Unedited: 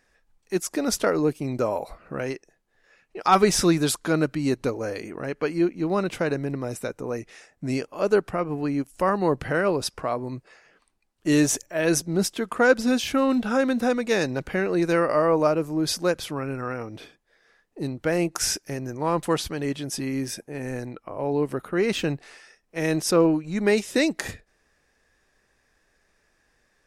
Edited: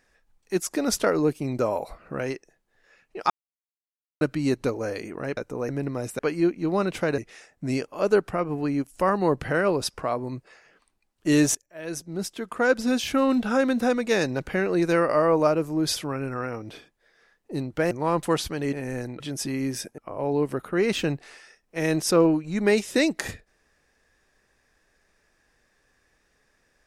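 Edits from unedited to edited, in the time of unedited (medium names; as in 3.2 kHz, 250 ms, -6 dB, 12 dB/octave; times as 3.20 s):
3.30–4.21 s: mute
5.37–6.36 s: swap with 6.86–7.18 s
11.55–13.22 s: fade in, from -23.5 dB
15.96–16.23 s: delete
18.18–18.91 s: delete
20.51–20.98 s: move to 19.73 s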